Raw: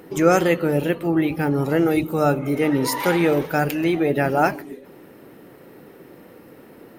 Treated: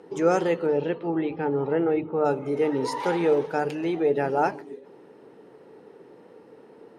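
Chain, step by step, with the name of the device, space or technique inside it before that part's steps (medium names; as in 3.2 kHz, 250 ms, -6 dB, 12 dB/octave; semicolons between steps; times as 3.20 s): hum notches 50/100/150 Hz; 0.66–2.24 s: low-pass 5.8 kHz -> 2.3 kHz 24 dB/octave; car door speaker (cabinet simulation 100–8600 Hz, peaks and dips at 440 Hz +10 dB, 880 Hz +8 dB, 2.2 kHz -3 dB, 7.5 kHz -4 dB); trim -8.5 dB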